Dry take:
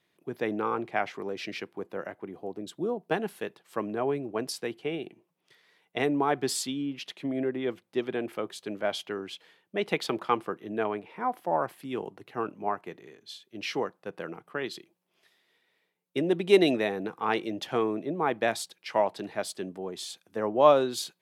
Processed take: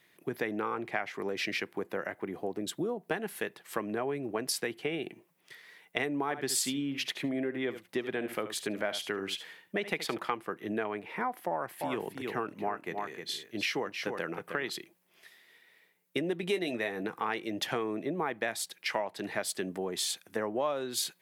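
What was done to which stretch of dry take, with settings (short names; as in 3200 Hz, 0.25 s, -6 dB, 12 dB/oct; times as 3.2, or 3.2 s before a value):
6.22–10.18 echo 72 ms -13 dB
11.5–14.74 echo 0.31 s -9.5 dB
16.41–17.03 doubler 17 ms -9.5 dB
whole clip: bell 1900 Hz +7 dB 0.75 oct; compressor 5:1, threshold -35 dBFS; high shelf 8300 Hz +11 dB; gain +4.5 dB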